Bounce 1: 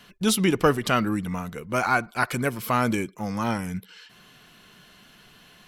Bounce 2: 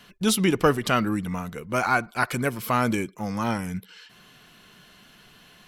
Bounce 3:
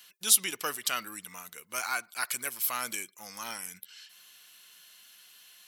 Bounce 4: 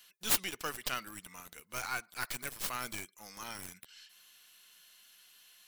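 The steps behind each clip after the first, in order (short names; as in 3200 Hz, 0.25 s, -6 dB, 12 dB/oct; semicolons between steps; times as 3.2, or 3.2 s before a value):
nothing audible
differentiator; gain +4.5 dB
tracing distortion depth 0.39 ms; gain -5 dB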